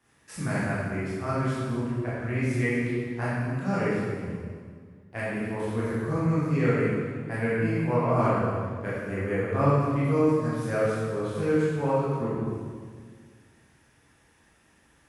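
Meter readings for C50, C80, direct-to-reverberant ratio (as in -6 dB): -3.0 dB, -0.5 dB, -10.0 dB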